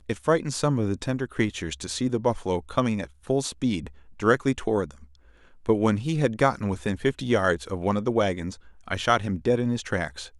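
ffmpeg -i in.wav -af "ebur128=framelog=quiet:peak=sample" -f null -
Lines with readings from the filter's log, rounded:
Integrated loudness:
  I:         -25.8 LUFS
  Threshold: -36.2 LUFS
Loudness range:
  LRA:         2.2 LU
  Threshold: -46.2 LUFS
  LRA low:   -27.3 LUFS
  LRA high:  -25.1 LUFS
Sample peak:
  Peak:       -6.2 dBFS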